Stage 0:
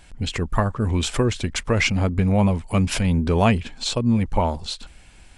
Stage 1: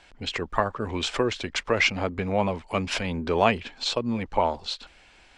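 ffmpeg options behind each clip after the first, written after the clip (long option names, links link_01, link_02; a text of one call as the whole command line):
ffmpeg -i in.wav -filter_complex "[0:a]acrossover=split=310 6200:gain=0.2 1 0.0708[link_01][link_02][link_03];[link_01][link_02][link_03]amix=inputs=3:normalize=0" out.wav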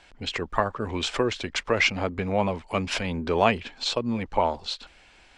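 ffmpeg -i in.wav -af anull out.wav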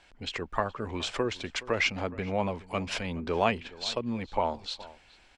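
ffmpeg -i in.wav -filter_complex "[0:a]asplit=2[link_01][link_02];[link_02]adelay=419.8,volume=-19dB,highshelf=frequency=4000:gain=-9.45[link_03];[link_01][link_03]amix=inputs=2:normalize=0,volume=-5dB" out.wav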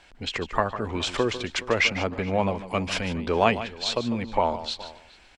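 ffmpeg -i in.wav -af "aecho=1:1:149:0.224,volume=5dB" out.wav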